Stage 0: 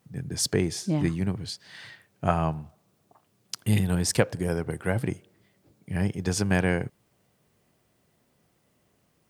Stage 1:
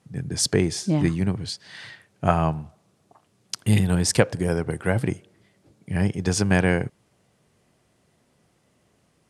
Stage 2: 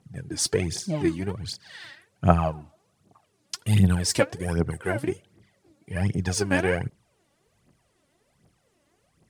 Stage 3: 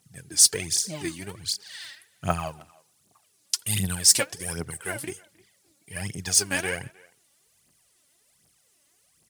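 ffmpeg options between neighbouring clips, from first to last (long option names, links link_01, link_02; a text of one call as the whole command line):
ffmpeg -i in.wav -af "lowpass=frequency=11000:width=0.5412,lowpass=frequency=11000:width=1.3066,volume=4dB" out.wav
ffmpeg -i in.wav -af "aphaser=in_gain=1:out_gain=1:delay=3.7:decay=0.7:speed=1.3:type=triangular,volume=-5dB" out.wav
ffmpeg -i in.wav -filter_complex "[0:a]asplit=2[link_01][link_02];[link_02]adelay=310,highpass=300,lowpass=3400,asoftclip=type=hard:threshold=-10dB,volume=-24dB[link_03];[link_01][link_03]amix=inputs=2:normalize=0,crystalizer=i=10:c=0,volume=-10dB" out.wav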